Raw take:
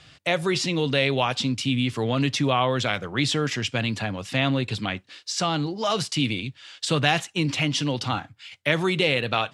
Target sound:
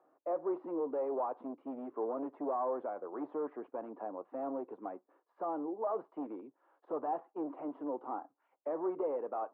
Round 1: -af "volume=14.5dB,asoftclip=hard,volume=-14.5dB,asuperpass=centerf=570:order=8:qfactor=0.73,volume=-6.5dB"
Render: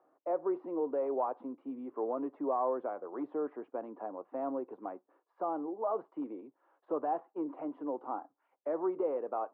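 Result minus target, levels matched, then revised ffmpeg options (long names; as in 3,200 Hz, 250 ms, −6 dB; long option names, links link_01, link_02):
gain into a clipping stage and back: distortion −9 dB
-af "volume=21.5dB,asoftclip=hard,volume=-21.5dB,asuperpass=centerf=570:order=8:qfactor=0.73,volume=-6.5dB"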